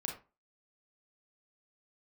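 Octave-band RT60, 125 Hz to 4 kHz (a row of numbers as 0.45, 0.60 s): 0.35, 0.30, 0.30, 0.30, 0.25, 0.20 s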